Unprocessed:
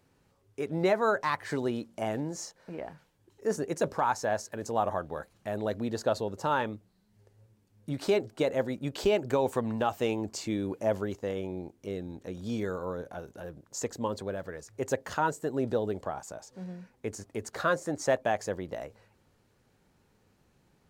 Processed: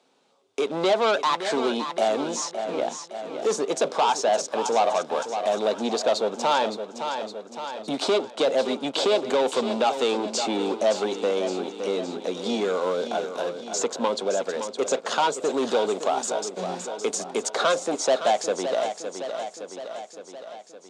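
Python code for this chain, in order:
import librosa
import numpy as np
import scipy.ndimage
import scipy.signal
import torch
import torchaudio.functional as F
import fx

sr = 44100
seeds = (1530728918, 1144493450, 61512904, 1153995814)

y = fx.high_shelf(x, sr, hz=4000.0, db=9.0, at=(15.49, 17.56))
y = fx.leveller(y, sr, passes=3)
y = fx.cabinet(y, sr, low_hz=260.0, low_slope=24, high_hz=8600.0, hz=(320.0, 710.0, 1800.0, 3600.0), db=(-7, 4, -8, 8))
y = fx.echo_feedback(y, sr, ms=564, feedback_pct=48, wet_db=-11)
y = fx.band_squash(y, sr, depth_pct=40)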